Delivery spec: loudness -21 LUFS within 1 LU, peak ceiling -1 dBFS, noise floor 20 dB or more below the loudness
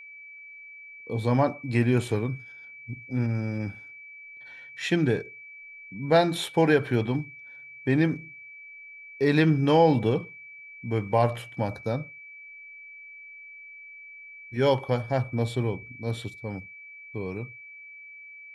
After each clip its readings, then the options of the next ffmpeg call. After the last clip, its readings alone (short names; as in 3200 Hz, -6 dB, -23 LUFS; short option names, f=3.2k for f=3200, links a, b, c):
steady tone 2300 Hz; tone level -43 dBFS; loudness -26.5 LUFS; peak -8.5 dBFS; loudness target -21.0 LUFS
-> -af "bandreject=f=2.3k:w=30"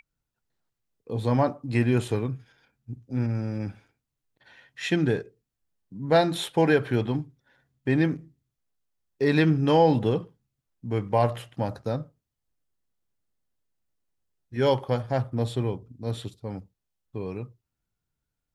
steady tone none; loudness -26.0 LUFS; peak -8.5 dBFS; loudness target -21.0 LUFS
-> -af "volume=5dB"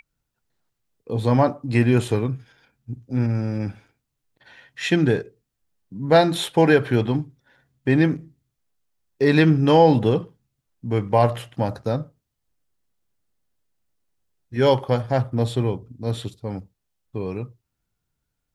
loudness -21.0 LUFS; peak -3.5 dBFS; noise floor -79 dBFS